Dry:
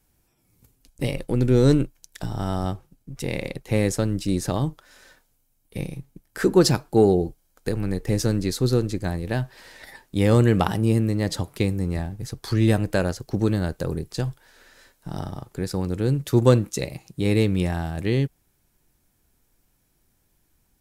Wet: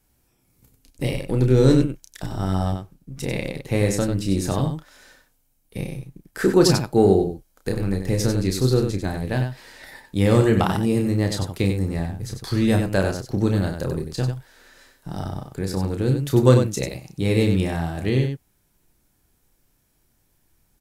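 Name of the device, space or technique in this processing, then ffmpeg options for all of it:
slapback doubling: -filter_complex "[0:a]asplit=3[a][b][c];[b]adelay=31,volume=-6dB[d];[c]adelay=95,volume=-6.5dB[e];[a][d][e]amix=inputs=3:normalize=0"

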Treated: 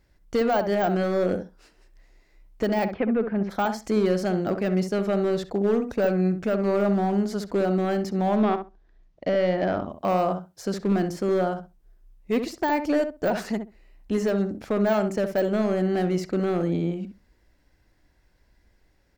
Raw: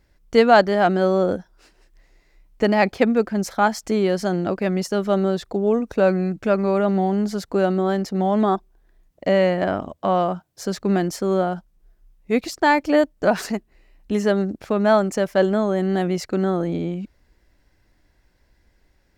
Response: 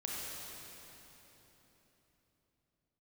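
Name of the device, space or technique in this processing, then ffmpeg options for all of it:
limiter into clipper: -filter_complex "[0:a]alimiter=limit=-9.5dB:level=0:latency=1:release=129,asoftclip=type=hard:threshold=-14.5dB,asplit=3[a][b][c];[a]afade=t=out:st=2.92:d=0.02[d];[b]lowpass=f=2.6k:w=0.5412,lowpass=f=2.6k:w=1.3066,afade=t=in:st=2.92:d=0.02,afade=t=out:st=3.49:d=0.02[e];[c]afade=t=in:st=3.49:d=0.02[f];[d][e][f]amix=inputs=3:normalize=0,deesser=0.75,asettb=1/sr,asplit=3[g][h][i];[g]atrim=end=8.364[j];[h]atrim=start=8.36:end=9.92,asetpts=PTS-STARTPTS,afade=t=in:d=0.004:c=qsin,afade=t=out:st=1.556:d=0.004:c=qsin,lowpass=f=5.7k:w=0.5412,lowpass=f=5.7k:w=1.3066[k];[i]atrim=start=9.916[l];[j][k]acrossfade=d=0.004:c1=hsin:c2=qsin[m];[m][l]acrossfade=d=0.004:c1=qsin:c2=hsin,asplit=2[n][o];[o]adelay=65,lowpass=f=1.3k:p=1,volume=-7dB,asplit=2[p][q];[q]adelay=65,lowpass=f=1.3k:p=1,volume=0.16,asplit=2[r][s];[s]adelay=65,lowpass=f=1.3k:p=1,volume=0.16[t];[n][p][r][t]amix=inputs=4:normalize=0,volume=-2.5dB"

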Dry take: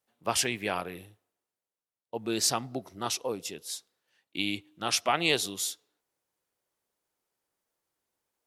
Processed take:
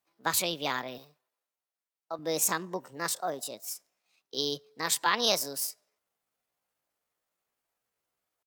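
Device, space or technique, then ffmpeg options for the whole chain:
chipmunk voice: -filter_complex "[0:a]asetrate=62367,aresample=44100,atempo=0.707107,asettb=1/sr,asplit=3[a][b][c];[a]atrim=end=0.984[d];[b]atrim=start=0.98:end=2.19,asetpts=PTS-STARTPTS,afade=t=in:d=0.004:c=qsin,afade=t=out:st=1.206:d=0.004:c=qsin,highpass=f=380:p=1[e];[c]atrim=start=2.186[f];[d][e]acrossfade=d=0.004:c1=hsin:c2=qsin[g];[g][f]acrossfade=d=0.004:c1=qsin:c2=hsin"

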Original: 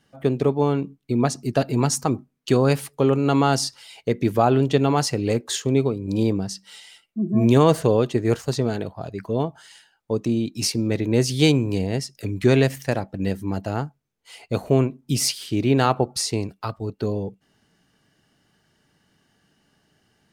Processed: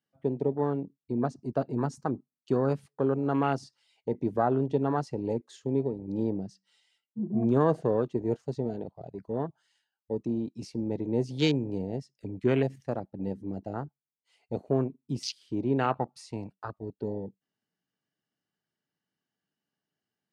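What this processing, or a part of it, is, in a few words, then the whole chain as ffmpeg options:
over-cleaned archive recording: -filter_complex "[0:a]highpass=130,lowpass=7.8k,afwtdn=0.0501,asettb=1/sr,asplit=3[a][b][c];[a]atrim=end=15.924[d];[b]atrim=start=15.92:end=16.53,asetpts=PTS-STARTPTS,afade=t=in:d=0.004:c=qsin,afade=t=out:st=0.606:d=0.004:c=qsin,equalizer=f=400:t=o:w=0.67:g=-8,equalizer=f=1k:t=o:w=0.67:g=7,equalizer=f=2.5k:t=o:w=0.67:g=6,equalizer=f=10k:t=o:w=0.67:g=4[e];[c]atrim=start=16.526[f];[d][e]acrossfade=d=0.004:c1=hsin:c2=qsin[g];[g][f]acrossfade=d=0.004:c1=qsin:c2=hsin,volume=-7.5dB"

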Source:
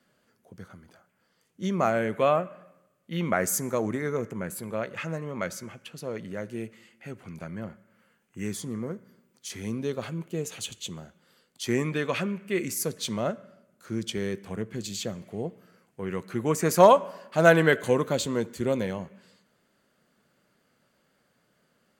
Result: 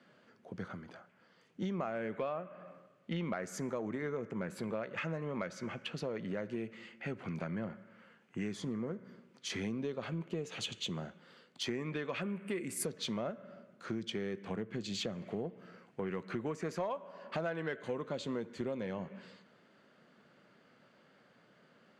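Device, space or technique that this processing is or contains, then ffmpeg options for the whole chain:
AM radio: -filter_complex "[0:a]highpass=130,lowpass=3.8k,acompressor=threshold=-39dB:ratio=8,asoftclip=type=tanh:threshold=-30dB,asettb=1/sr,asplit=3[a][b][c];[a]atrim=end=12.224[d];[b]atrim=start=12.22:end=12.85,asetpts=PTS-STARTPTS,afade=t=in:d=0.004:c=qsin,afade=t=out:st=0.626:d=0.004:c=qsin,highshelf=f=7.4k:t=q:w=3:g=8.5[e];[c]atrim=start=12.846[f];[d][e]acrossfade=d=0.004:c1=hsin:c2=qsin[g];[g][f]acrossfade=d=0.004:c1=qsin:c2=hsin,volume=5dB"

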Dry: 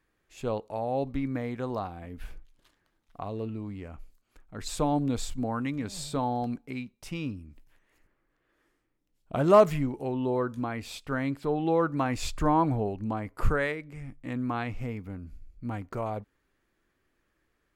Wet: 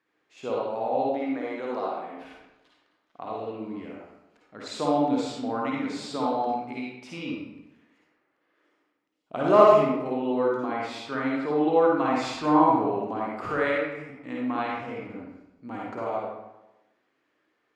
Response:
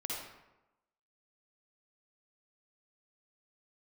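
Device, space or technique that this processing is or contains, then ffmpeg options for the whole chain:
supermarket ceiling speaker: -filter_complex "[0:a]asettb=1/sr,asplit=3[a][b][c];[a]atrim=end=1.064[d];[b]atrim=start=1.06:end=2.17,asetpts=PTS-STARTPTS,afade=t=in:d=0.004:c=qsin,afade=t=out:st=1.106:d=0.004:c=qsin,highpass=240[e];[c]atrim=start=2.166[f];[d][e]acrossfade=d=0.004:c1=hsin:c2=qsin[g];[g][f]acrossfade=d=0.004:c1=qsin:c2=hsin,highpass=260,lowpass=5.1k[h];[1:a]atrim=start_sample=2205[i];[h][i]afir=irnorm=-1:irlink=0,volume=2.5dB"

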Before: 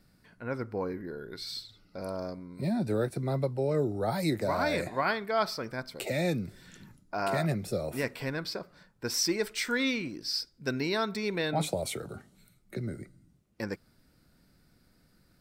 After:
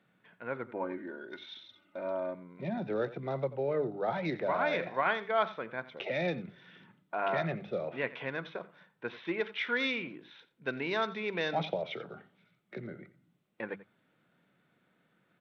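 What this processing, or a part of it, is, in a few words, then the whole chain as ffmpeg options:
Bluetooth headset: -filter_complex "[0:a]bandreject=f=50:t=h:w=6,bandreject=f=100:t=h:w=6,bandreject=f=150:t=h:w=6,bandreject=f=200:t=h:w=6,asettb=1/sr,asplit=3[a][b][c];[a]atrim=end=0.664[d];[b]atrim=start=0.66:end=2.35,asetpts=PTS-STARTPTS,afade=t=in:d=0.004:c=qsin,afade=t=out:st=1.686:d=0.004:c=qsin,aecho=1:1:3.3:0.82,atrim=end_sample=74529[e];[c]atrim=start=2.346[f];[d][e]acrossfade=d=0.004:c1=hsin:c2=qsin[g];[g][f]acrossfade=d=0.004:c1=qsin:c2=hsin,highpass=f=160:w=0.5412,highpass=f=160:w=1.3066,equalizer=f=260:w=1.3:g=-7.5,asplit=2[h][i];[i]adelay=87.46,volume=-17dB,highshelf=f=4k:g=-1.97[j];[h][j]amix=inputs=2:normalize=0,aresample=8000,aresample=44100" -ar 32000 -c:a sbc -b:a 64k

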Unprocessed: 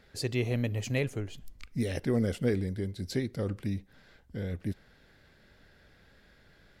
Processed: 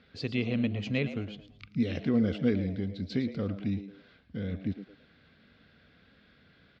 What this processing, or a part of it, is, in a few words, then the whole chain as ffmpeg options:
frequency-shifting delay pedal into a guitar cabinet: -filter_complex "[0:a]asplit=4[a][b][c][d];[b]adelay=111,afreqshift=100,volume=-13dB[e];[c]adelay=222,afreqshift=200,volume=-23.2dB[f];[d]adelay=333,afreqshift=300,volume=-33.3dB[g];[a][e][f][g]amix=inputs=4:normalize=0,highpass=90,equalizer=f=120:t=q:w=4:g=-6,equalizer=f=240:t=q:w=4:g=3,equalizer=f=370:t=q:w=4:g=-8,equalizer=f=590:t=q:w=4:g=-6,equalizer=f=870:t=q:w=4:g=-10,equalizer=f=1.8k:t=q:w=4:g=-7,lowpass=f=4k:w=0.5412,lowpass=f=4k:w=1.3066,volume=3dB"

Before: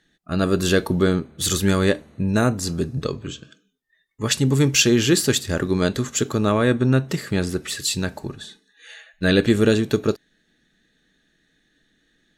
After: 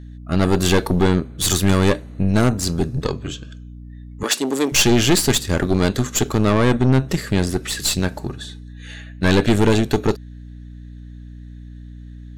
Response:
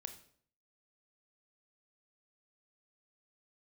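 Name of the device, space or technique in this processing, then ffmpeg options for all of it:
valve amplifier with mains hum: -filter_complex "[0:a]aeval=exprs='(tanh(7.08*val(0)+0.7)-tanh(0.7))/7.08':c=same,aeval=exprs='val(0)+0.00794*(sin(2*PI*60*n/s)+sin(2*PI*2*60*n/s)/2+sin(2*PI*3*60*n/s)/3+sin(2*PI*4*60*n/s)/4+sin(2*PI*5*60*n/s)/5)':c=same,asettb=1/sr,asplit=3[a][b][c];[a]atrim=end=4.234[d];[b]atrim=start=4.23:end=4.72,asetpts=PTS-STARTPTS,afade=t=in:d=0.004:c=qsin,afade=t=out:st=0.486:d=0.004:c=qsin,highpass=f=280:w=0.5412,highpass=f=280:w=1.3066[e];[c]atrim=start=4.716[f];[d][e]acrossfade=d=0.004:c1=hsin:c2=qsin[g];[g][f]acrossfade=d=0.004:c1=qsin:c2=hsin,volume=7dB"

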